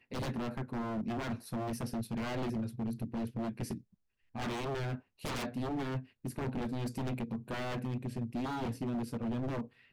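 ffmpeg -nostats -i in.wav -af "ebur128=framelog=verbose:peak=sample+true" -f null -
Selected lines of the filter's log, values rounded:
Integrated loudness:
  I:         -37.8 LUFS
  Threshold: -47.9 LUFS
Loudness range:
  LRA:         1.5 LU
  Threshold: -58.2 LUFS
  LRA low:   -39.0 LUFS
  LRA high:  -37.4 LUFS
Sample peak:
  Peak:      -28.6 dBFS
True peak:
  Peak:      -28.6 dBFS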